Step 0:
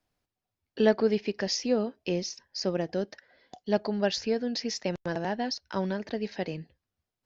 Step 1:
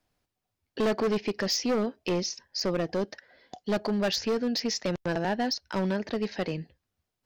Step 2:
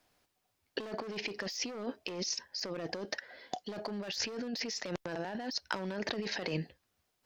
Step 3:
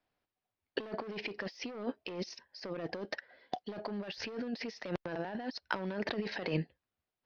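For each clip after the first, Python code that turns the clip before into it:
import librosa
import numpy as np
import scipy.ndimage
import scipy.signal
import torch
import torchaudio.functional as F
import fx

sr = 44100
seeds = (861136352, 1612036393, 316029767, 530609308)

y1 = np.clip(x, -10.0 ** (-26.0 / 20.0), 10.0 ** (-26.0 / 20.0))
y1 = y1 * 10.0 ** (3.5 / 20.0)
y2 = fx.low_shelf(y1, sr, hz=220.0, db=-10.5)
y2 = fx.over_compress(y2, sr, threshold_db=-38.0, ratio=-1.0)
y3 = scipy.signal.lfilter(np.full(6, 1.0 / 6), 1.0, y2)
y3 = fx.upward_expand(y3, sr, threshold_db=-58.0, expansion=1.5)
y3 = y3 * 10.0 ** (3.0 / 20.0)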